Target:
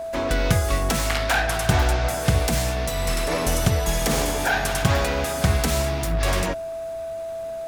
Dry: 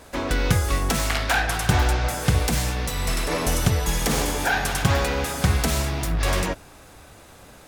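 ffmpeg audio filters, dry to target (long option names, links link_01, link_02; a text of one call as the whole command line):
ffmpeg -i in.wav -af "aeval=exprs='val(0)+0.0398*sin(2*PI*660*n/s)':channel_layout=same" out.wav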